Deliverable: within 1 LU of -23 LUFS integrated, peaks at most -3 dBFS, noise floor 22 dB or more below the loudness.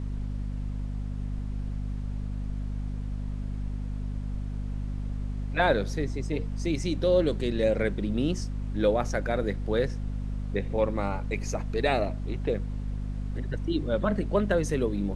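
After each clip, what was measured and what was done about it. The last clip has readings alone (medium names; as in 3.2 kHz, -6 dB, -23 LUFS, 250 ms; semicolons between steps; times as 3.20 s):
hum 50 Hz; highest harmonic 250 Hz; hum level -29 dBFS; noise floor -34 dBFS; noise floor target -52 dBFS; loudness -30.0 LUFS; peak level -10.0 dBFS; loudness target -23.0 LUFS
-> hum notches 50/100/150/200/250 Hz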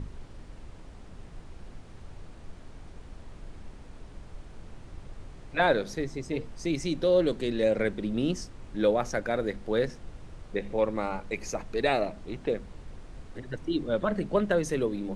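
hum not found; noise floor -47 dBFS; noise floor target -51 dBFS
-> noise print and reduce 6 dB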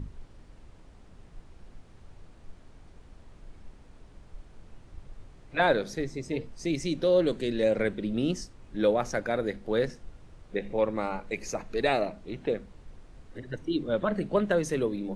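noise floor -53 dBFS; loudness -29.0 LUFS; peak level -11.0 dBFS; loudness target -23.0 LUFS
-> trim +6 dB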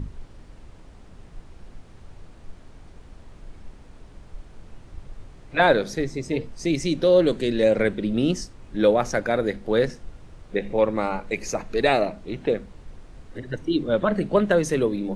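loudness -23.0 LUFS; peak level -5.0 dBFS; noise floor -47 dBFS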